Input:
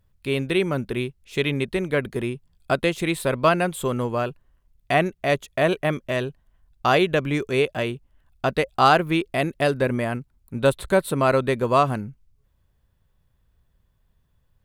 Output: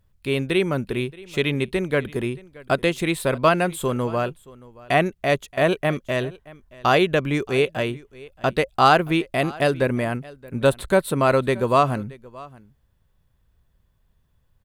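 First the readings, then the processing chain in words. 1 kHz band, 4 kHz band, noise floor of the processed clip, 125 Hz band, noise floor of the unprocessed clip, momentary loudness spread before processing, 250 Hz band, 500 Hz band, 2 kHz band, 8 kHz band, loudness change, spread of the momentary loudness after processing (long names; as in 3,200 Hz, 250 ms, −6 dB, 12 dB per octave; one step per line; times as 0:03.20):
+1.0 dB, +1.0 dB, −65 dBFS, +1.0 dB, −67 dBFS, 9 LU, +1.0 dB, +1.0 dB, +1.0 dB, +1.0 dB, +1.0 dB, 10 LU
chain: single-tap delay 625 ms −21.5 dB
level +1 dB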